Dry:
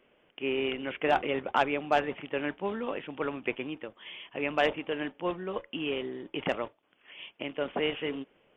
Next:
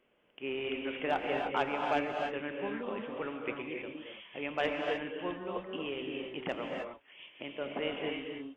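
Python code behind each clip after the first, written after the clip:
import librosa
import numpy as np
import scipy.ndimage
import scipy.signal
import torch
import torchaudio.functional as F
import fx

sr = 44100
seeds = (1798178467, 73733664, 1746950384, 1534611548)

y = fx.rev_gated(x, sr, seeds[0], gate_ms=330, shape='rising', drr_db=1.0)
y = F.gain(torch.from_numpy(y), -6.5).numpy()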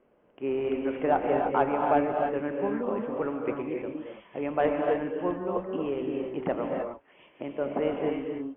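y = scipy.signal.sosfilt(scipy.signal.butter(2, 1100.0, 'lowpass', fs=sr, output='sos'), x)
y = F.gain(torch.from_numpy(y), 8.5).numpy()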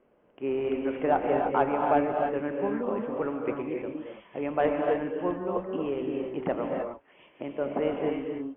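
y = x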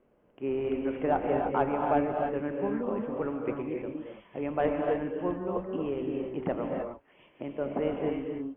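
y = fx.low_shelf(x, sr, hz=200.0, db=8.0)
y = F.gain(torch.from_numpy(y), -3.5).numpy()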